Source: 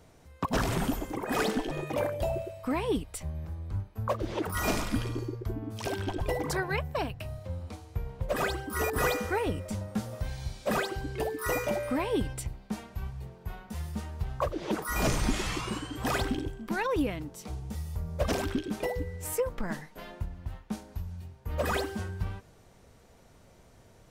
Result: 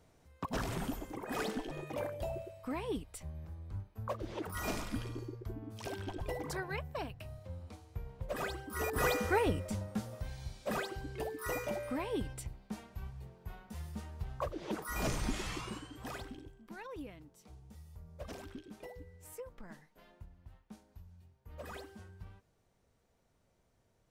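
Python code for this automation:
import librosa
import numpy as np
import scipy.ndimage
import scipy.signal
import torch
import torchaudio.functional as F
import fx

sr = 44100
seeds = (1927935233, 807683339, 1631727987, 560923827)

y = fx.gain(x, sr, db=fx.line((8.66, -8.5), (9.37, 0.0), (10.23, -7.5), (15.62, -7.5), (16.31, -17.0)))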